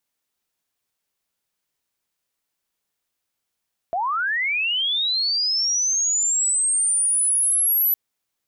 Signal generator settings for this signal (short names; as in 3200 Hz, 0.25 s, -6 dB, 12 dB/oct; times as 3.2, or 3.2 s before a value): chirp linear 650 Hz -> 12000 Hz -20.5 dBFS -> -16 dBFS 4.01 s